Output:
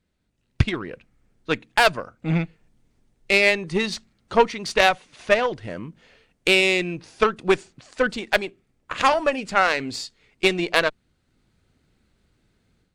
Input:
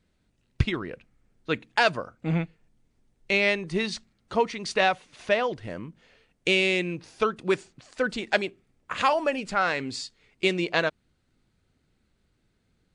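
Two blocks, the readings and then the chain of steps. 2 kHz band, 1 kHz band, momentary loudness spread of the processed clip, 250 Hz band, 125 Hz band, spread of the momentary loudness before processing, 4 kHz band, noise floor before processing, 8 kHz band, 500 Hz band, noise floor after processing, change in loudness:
+5.0 dB, +5.0 dB, 16 LU, +3.0 dB, +3.5 dB, 14 LU, +5.0 dB, -71 dBFS, +6.5 dB, +4.5 dB, -70 dBFS, +5.0 dB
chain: Chebyshev shaper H 6 -23 dB, 7 -26 dB, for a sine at -6 dBFS; level rider gain up to 9 dB

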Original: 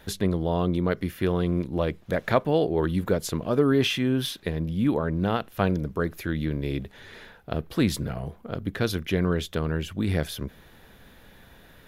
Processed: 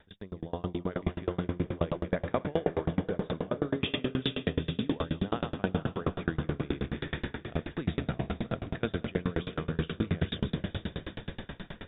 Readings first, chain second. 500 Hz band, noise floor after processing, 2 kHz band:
-7.0 dB, -54 dBFS, -5.5 dB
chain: backward echo that repeats 104 ms, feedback 44%, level -9.5 dB; reverse; compression 6:1, threshold -35 dBFS, peak gain reduction 18 dB; reverse; brick-wall FIR low-pass 3.8 kHz; level rider gain up to 12 dB; on a send: echo that smears into a reverb 461 ms, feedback 57%, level -6 dB; on the sum: sawtooth tremolo in dB decaying 9.4 Hz, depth 31 dB; trim +1 dB

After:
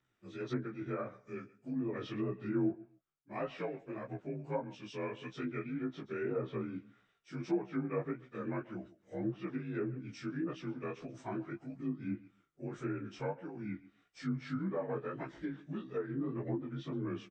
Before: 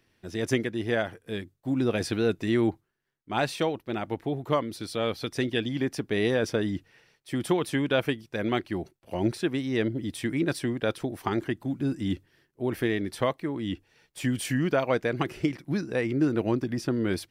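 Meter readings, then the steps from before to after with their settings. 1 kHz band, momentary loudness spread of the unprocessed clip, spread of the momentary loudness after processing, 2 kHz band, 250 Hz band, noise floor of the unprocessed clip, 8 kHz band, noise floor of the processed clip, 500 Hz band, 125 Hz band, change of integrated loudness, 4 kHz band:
-11.5 dB, 8 LU, 9 LU, -15.0 dB, -10.0 dB, -73 dBFS, under -20 dB, -75 dBFS, -11.5 dB, -10.0 dB, -11.0 dB, -20.0 dB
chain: frequency axis rescaled in octaves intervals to 86%; doubling 15 ms -8 dB; on a send: feedback delay 135 ms, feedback 19%, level -19 dB; on the sum: chorus 1.7 Hz, delay 16 ms, depth 5.5 ms; low-pass that closes with the level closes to 1.2 kHz, closed at -24 dBFS; trim -7.5 dB

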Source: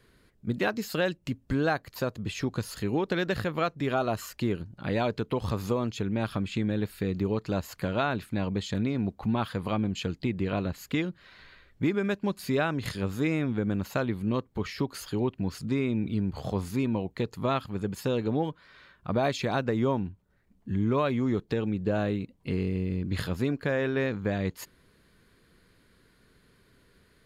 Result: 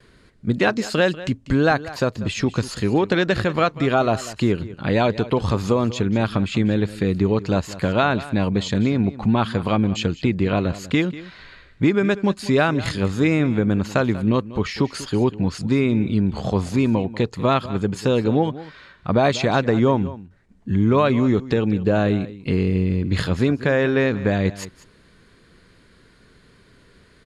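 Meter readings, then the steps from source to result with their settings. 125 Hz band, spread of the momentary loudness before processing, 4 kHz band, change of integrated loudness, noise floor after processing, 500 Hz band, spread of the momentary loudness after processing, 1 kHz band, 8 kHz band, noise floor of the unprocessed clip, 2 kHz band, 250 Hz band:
+9.0 dB, 6 LU, +9.0 dB, +9.0 dB, -54 dBFS, +9.0 dB, 6 LU, +9.0 dB, +8.0 dB, -64 dBFS, +9.0 dB, +9.0 dB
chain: gate with hold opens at -60 dBFS; low-pass 9.2 kHz 24 dB/octave; delay 192 ms -16.5 dB; trim +9 dB

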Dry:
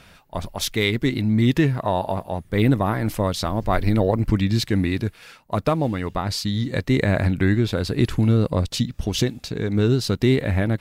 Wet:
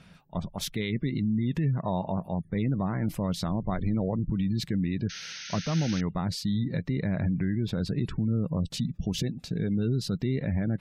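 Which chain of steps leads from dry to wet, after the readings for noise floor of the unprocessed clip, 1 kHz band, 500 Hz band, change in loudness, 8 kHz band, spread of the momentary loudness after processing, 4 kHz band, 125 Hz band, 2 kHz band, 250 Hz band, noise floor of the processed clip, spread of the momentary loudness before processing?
-51 dBFS, -11.0 dB, -11.5 dB, -7.5 dB, -7.5 dB, 4 LU, -9.0 dB, -7.0 dB, -12.5 dB, -6.0 dB, -53 dBFS, 7 LU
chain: spectral gate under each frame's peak -30 dB strong; peaking EQ 170 Hz +13 dB 0.82 oct; peak limiter -11.5 dBFS, peak gain reduction 11 dB; painted sound noise, 5.09–6.01 s, 1.3–6.5 kHz -32 dBFS; trim -8.5 dB

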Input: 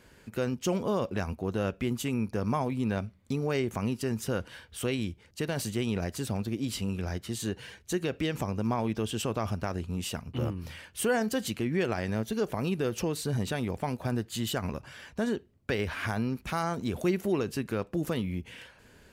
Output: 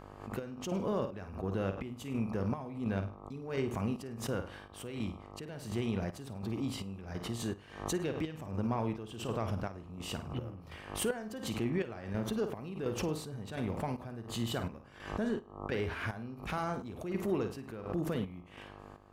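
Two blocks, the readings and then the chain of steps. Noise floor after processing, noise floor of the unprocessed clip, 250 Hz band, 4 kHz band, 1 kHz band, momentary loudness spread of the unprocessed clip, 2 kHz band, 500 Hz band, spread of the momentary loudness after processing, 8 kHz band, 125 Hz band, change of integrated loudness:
-52 dBFS, -59 dBFS, -5.5 dB, -6.5 dB, -5.5 dB, 6 LU, -7.0 dB, -5.5 dB, 9 LU, -7.0 dB, -5.5 dB, -5.5 dB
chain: in parallel at -5.5 dB: saturation -27.5 dBFS, distortion -12 dB; on the sum: treble shelf 3.8 kHz -8.5 dB; mains buzz 50 Hz, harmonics 26, -46 dBFS -2 dB/octave; on a send: flutter echo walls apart 8.8 m, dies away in 0.36 s; on the sum: square tremolo 1.4 Hz, depth 65%, duty 55%; swell ahead of each attack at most 93 dB/s; trim -7 dB

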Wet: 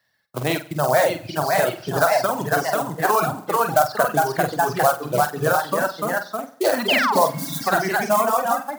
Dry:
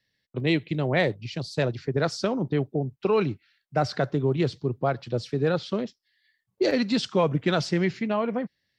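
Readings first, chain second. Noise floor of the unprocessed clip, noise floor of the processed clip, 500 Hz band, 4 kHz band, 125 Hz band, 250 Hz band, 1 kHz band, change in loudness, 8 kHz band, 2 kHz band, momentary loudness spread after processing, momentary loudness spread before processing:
-79 dBFS, -47 dBFS, +5.5 dB, +5.5 dB, -2.5 dB, -2.0 dB, +14.0 dB, +6.0 dB, +15.5 dB, +10.0 dB, 6 LU, 7 LU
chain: high-order bell 970 Hz +16 dB; short-mantissa float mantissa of 2-bit; ever faster or slower copies 617 ms, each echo +1 st, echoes 2; painted sound fall, 6.88–7.13 s, 770–3300 Hz -18 dBFS; compression 2:1, threshold -18 dBFS, peak gain reduction 7.5 dB; high-pass 66 Hz; spectral replace 7.34–7.64 s, 240–3400 Hz before; treble shelf 6.3 kHz +10 dB; on a send: flutter echo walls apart 8.1 m, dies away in 0.59 s; on the sum: reverb removal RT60 1.5 s

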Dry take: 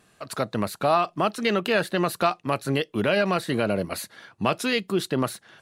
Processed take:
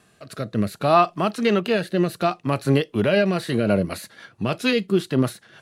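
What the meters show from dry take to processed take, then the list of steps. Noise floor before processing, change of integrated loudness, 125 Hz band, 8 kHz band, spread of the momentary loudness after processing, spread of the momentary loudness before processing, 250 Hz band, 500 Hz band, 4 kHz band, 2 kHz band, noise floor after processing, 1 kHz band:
-62 dBFS, +3.5 dB, +6.5 dB, -3.0 dB, 11 LU, 8 LU, +5.0 dB, +3.0 dB, 0.0 dB, 0.0 dB, -58 dBFS, +1.5 dB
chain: harmonic-percussive split harmonic +8 dB; rotary cabinet horn 0.65 Hz, later 6.7 Hz, at 3.07 s

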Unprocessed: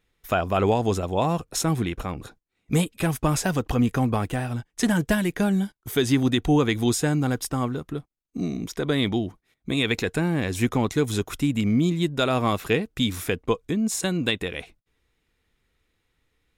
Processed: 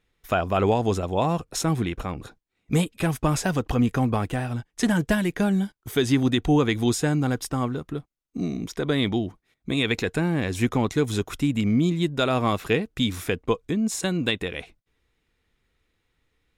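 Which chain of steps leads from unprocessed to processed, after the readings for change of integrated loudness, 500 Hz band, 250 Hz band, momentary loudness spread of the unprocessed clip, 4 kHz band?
0.0 dB, 0.0 dB, 0.0 dB, 8 LU, -0.5 dB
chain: treble shelf 9.7 kHz -6.5 dB

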